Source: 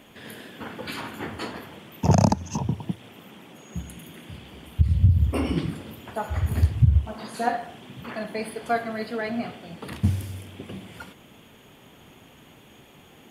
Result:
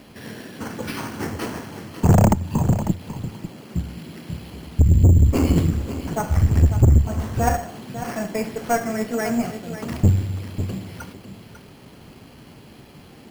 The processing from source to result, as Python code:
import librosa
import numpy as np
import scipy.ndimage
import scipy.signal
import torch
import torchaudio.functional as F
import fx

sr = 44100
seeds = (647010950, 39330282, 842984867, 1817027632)

p1 = fx.low_shelf(x, sr, hz=310.0, db=7.0)
p2 = fx.tube_stage(p1, sr, drive_db=14.0, bias=0.6)
p3 = p2 + fx.echo_single(p2, sr, ms=547, db=-11.0, dry=0)
p4 = np.repeat(scipy.signal.resample_poly(p3, 1, 6), 6)[:len(p3)]
y = p4 * 10.0 ** (5.5 / 20.0)